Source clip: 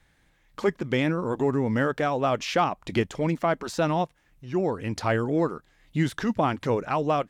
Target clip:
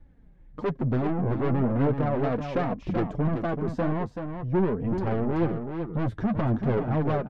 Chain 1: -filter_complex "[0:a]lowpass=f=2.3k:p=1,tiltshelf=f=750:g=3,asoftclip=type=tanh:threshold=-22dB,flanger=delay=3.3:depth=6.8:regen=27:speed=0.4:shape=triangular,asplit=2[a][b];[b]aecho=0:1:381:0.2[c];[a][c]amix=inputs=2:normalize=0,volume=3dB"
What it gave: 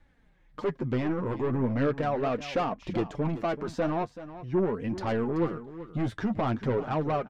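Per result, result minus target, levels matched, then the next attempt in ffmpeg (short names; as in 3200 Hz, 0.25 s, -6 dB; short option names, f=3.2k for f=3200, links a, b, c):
echo-to-direct -7 dB; 1000 Hz band +2.5 dB
-filter_complex "[0:a]lowpass=f=2.3k:p=1,tiltshelf=f=750:g=3,asoftclip=type=tanh:threshold=-22dB,flanger=delay=3.3:depth=6.8:regen=27:speed=0.4:shape=triangular,asplit=2[a][b];[b]aecho=0:1:381:0.447[c];[a][c]amix=inputs=2:normalize=0,volume=3dB"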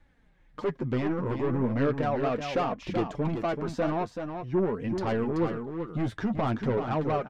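1000 Hz band +2.5 dB
-filter_complex "[0:a]lowpass=f=2.3k:p=1,tiltshelf=f=750:g=13,asoftclip=type=tanh:threshold=-22dB,flanger=delay=3.3:depth=6.8:regen=27:speed=0.4:shape=triangular,asplit=2[a][b];[b]aecho=0:1:381:0.447[c];[a][c]amix=inputs=2:normalize=0,volume=3dB"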